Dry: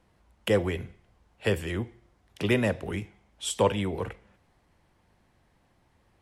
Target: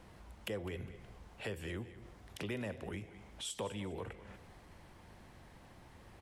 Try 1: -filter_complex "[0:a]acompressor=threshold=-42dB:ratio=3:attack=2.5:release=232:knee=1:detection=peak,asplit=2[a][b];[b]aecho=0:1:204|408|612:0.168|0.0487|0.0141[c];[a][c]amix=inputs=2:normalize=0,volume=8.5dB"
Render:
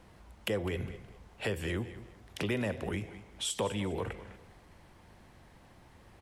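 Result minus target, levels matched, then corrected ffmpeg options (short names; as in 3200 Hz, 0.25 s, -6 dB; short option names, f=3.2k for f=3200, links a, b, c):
compressor: peak gain reduction -7.5 dB
-filter_complex "[0:a]acompressor=threshold=-53.5dB:ratio=3:attack=2.5:release=232:knee=1:detection=peak,asplit=2[a][b];[b]aecho=0:1:204|408|612:0.168|0.0487|0.0141[c];[a][c]amix=inputs=2:normalize=0,volume=8.5dB"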